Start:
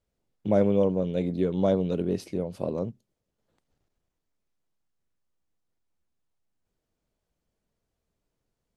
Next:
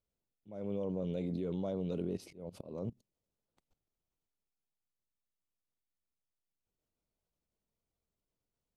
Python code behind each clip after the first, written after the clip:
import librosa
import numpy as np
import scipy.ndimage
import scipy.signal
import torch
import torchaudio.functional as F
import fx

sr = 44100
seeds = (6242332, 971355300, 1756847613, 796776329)

y = fx.peak_eq(x, sr, hz=1700.0, db=-7.0, octaves=0.28)
y = fx.level_steps(y, sr, step_db=18)
y = fx.auto_swell(y, sr, attack_ms=274.0)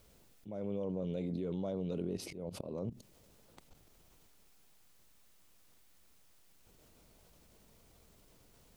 y = fx.env_flatten(x, sr, amount_pct=50)
y = y * 10.0 ** (-1.5 / 20.0)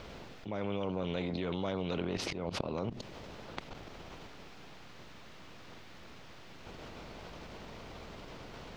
y = fx.air_absorb(x, sr, metres=220.0)
y = fx.spectral_comp(y, sr, ratio=2.0)
y = y * 10.0 ** (9.0 / 20.0)